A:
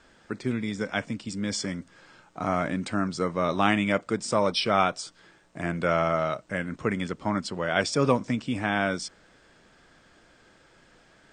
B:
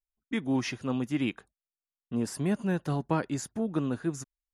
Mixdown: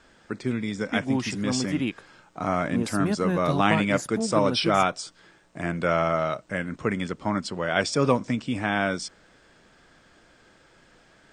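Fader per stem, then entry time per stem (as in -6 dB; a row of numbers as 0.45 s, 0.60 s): +1.0 dB, +2.0 dB; 0.00 s, 0.60 s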